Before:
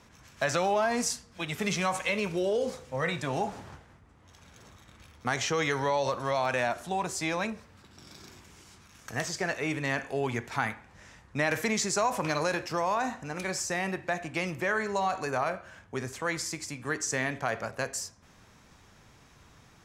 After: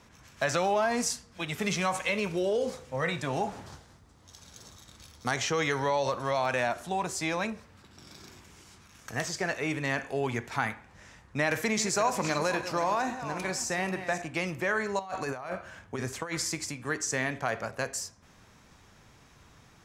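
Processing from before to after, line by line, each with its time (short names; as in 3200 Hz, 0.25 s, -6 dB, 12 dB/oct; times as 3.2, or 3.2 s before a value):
3.66–5.31 resonant high shelf 3300 Hz +7.5 dB, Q 1.5
11.5–14.22 regenerating reverse delay 0.268 s, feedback 41%, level -10.5 dB
14.99–16.72 negative-ratio compressor -33 dBFS, ratio -0.5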